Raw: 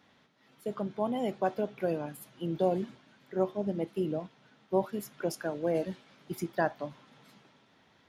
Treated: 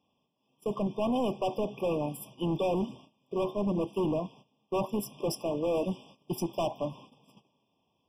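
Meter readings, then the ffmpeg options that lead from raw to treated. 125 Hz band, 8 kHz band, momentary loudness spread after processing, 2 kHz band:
+2.5 dB, +3.5 dB, 8 LU, -6.5 dB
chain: -af "agate=range=-17dB:threshold=-56dB:ratio=16:detection=peak,volume=32.5dB,asoftclip=hard,volume=-32.5dB,afftfilt=real='re*eq(mod(floor(b*sr/1024/1200),2),0)':imag='im*eq(mod(floor(b*sr/1024/1200),2),0)':win_size=1024:overlap=0.75,volume=7dB"

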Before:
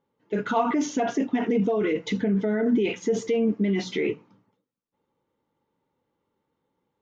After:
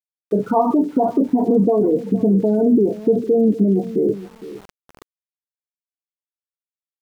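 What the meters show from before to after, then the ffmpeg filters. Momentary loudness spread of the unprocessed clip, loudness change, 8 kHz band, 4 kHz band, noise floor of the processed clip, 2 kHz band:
5 LU, +7.5 dB, n/a, under -10 dB, under -85 dBFS, under -10 dB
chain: -filter_complex "[0:a]asplit=2[a][b];[b]acompressor=threshold=-36dB:ratio=4,volume=2.5dB[c];[a][c]amix=inputs=2:normalize=0,lowpass=f=1k:w=0.5412,lowpass=f=1k:w=1.3066,afftdn=nr=18:nf=-31,aecho=1:1:460|920:0.158|0.0285,aeval=exprs='val(0)*gte(abs(val(0)),0.00473)':c=same,areverse,acompressor=mode=upward:threshold=-41dB:ratio=2.5,areverse,volume=5.5dB"

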